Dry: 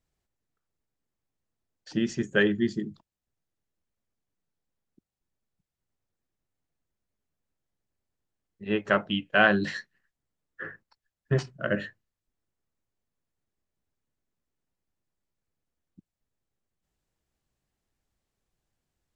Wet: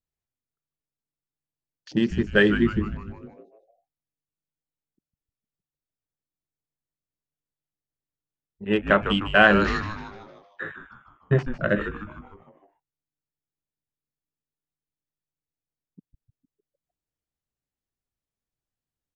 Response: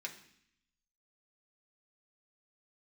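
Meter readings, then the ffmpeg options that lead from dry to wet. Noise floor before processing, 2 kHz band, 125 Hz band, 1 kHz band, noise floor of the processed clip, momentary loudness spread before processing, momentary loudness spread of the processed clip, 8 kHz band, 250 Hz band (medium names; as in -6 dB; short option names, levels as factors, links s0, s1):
under -85 dBFS, +5.0 dB, +5.5 dB, +5.5 dB, under -85 dBFS, 20 LU, 21 LU, no reading, +5.0 dB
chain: -filter_complex "[0:a]afwtdn=0.00631,asplit=7[s0][s1][s2][s3][s4][s5][s6];[s1]adelay=152,afreqshift=-150,volume=0.335[s7];[s2]adelay=304,afreqshift=-300,volume=0.174[s8];[s3]adelay=456,afreqshift=-450,volume=0.0902[s9];[s4]adelay=608,afreqshift=-600,volume=0.0473[s10];[s5]adelay=760,afreqshift=-750,volume=0.0245[s11];[s6]adelay=912,afreqshift=-900,volume=0.0127[s12];[s0][s7][s8][s9][s10][s11][s12]amix=inputs=7:normalize=0,volume=1.68"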